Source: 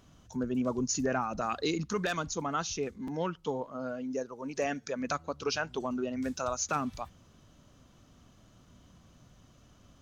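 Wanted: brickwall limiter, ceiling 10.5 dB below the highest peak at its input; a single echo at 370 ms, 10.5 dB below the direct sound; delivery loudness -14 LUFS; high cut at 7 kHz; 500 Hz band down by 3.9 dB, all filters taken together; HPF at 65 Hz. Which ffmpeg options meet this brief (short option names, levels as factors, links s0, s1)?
-af "highpass=65,lowpass=7000,equalizer=f=500:t=o:g=-5,alimiter=level_in=2.24:limit=0.0631:level=0:latency=1,volume=0.447,aecho=1:1:370:0.299,volume=20"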